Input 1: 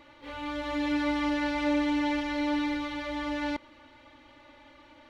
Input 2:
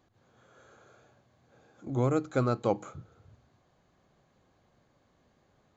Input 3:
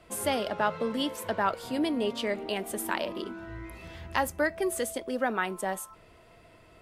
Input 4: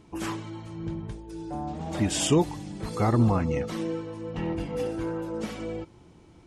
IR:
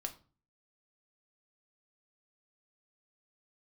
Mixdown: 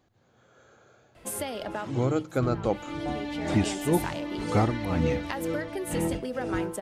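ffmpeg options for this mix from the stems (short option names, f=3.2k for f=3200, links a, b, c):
-filter_complex "[0:a]adelay=2450,volume=-3dB[a];[1:a]volume=1dB,asplit=2[b][c];[2:a]adelay=1150,volume=2.5dB[d];[3:a]lowpass=9.9k,tremolo=f=2:d=0.9,adelay=1550,volume=2.5dB[e];[c]apad=whole_len=351303[f];[d][f]sidechaincompress=threshold=-42dB:ratio=12:attack=7.2:release=663[g];[a][g]amix=inputs=2:normalize=0,acompressor=threshold=-30dB:ratio=6,volume=0dB[h];[b][e][h]amix=inputs=3:normalize=0,equalizer=f=1.1k:w=3.3:g=-3"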